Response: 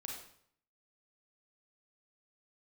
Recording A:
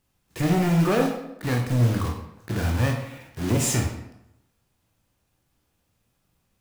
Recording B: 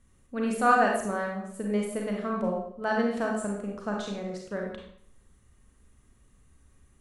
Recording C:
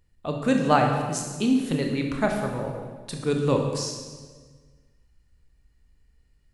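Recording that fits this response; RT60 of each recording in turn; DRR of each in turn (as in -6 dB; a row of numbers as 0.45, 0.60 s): B; 0.85, 0.65, 1.5 s; 1.5, -1.0, 1.5 dB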